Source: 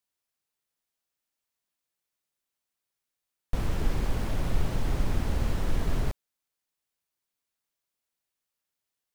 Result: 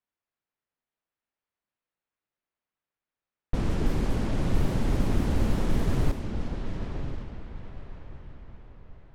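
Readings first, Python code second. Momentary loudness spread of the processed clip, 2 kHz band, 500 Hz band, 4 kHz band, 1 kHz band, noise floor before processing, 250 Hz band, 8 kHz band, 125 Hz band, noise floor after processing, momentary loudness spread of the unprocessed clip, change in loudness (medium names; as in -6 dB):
19 LU, +1.0 dB, +4.5 dB, +1.0 dB, +2.0 dB, under -85 dBFS, +7.0 dB, 0.0 dB, +3.5 dB, under -85 dBFS, 5 LU, +2.0 dB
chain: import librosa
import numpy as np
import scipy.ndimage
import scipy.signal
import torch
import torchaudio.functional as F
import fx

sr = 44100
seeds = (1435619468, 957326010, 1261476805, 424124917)

y = fx.echo_diffused(x, sr, ms=989, feedback_pct=44, wet_db=-7.0)
y = fx.dynamic_eq(y, sr, hz=250.0, q=0.72, threshold_db=-46.0, ratio=4.0, max_db=7)
y = fx.env_lowpass(y, sr, base_hz=2200.0, full_db=-18.5)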